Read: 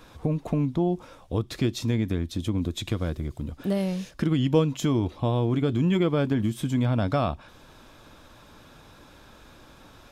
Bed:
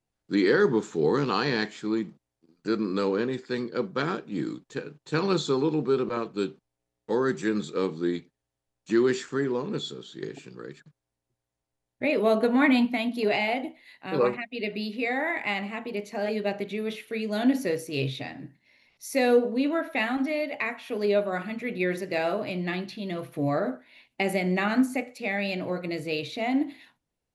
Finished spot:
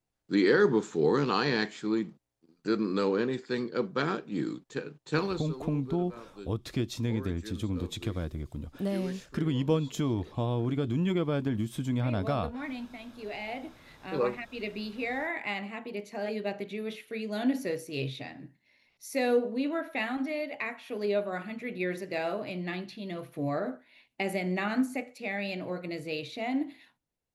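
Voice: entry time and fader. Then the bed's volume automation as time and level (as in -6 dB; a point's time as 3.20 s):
5.15 s, -5.5 dB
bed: 5.18 s -1.5 dB
5.50 s -17 dB
13.14 s -17 dB
13.79 s -5 dB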